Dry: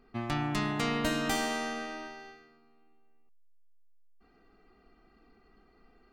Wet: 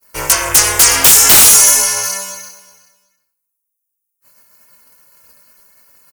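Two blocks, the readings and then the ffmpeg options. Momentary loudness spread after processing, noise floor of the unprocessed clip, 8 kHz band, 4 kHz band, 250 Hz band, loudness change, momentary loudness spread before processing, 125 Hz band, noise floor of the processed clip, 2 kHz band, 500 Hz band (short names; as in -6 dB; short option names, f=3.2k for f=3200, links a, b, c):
15 LU, -64 dBFS, +38.0 dB, +24.5 dB, +2.5 dB, +26.0 dB, 15 LU, +7.0 dB, -75 dBFS, +18.0 dB, +12.5 dB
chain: -filter_complex "[0:a]highpass=65,flanger=delay=16:depth=4.7:speed=0.66,acrossover=split=500[a][b];[b]acontrast=37[c];[a][c]amix=inputs=2:normalize=0,agate=range=-33dB:threshold=-57dB:ratio=3:detection=peak,tiltshelf=f=780:g=-6,aexciter=amount=14.6:drive=9.9:freq=6.1k,equalizer=f=7.7k:t=o:w=0.3:g=-4,aeval=exprs='val(0)*sin(2*PI*200*n/s)':c=same,asplit=2[d][e];[e]aecho=0:1:370|740:0.112|0.0269[f];[d][f]amix=inputs=2:normalize=0,aeval=exprs='1.06*sin(PI/2*5.01*val(0)/1.06)':c=same,volume=-2dB"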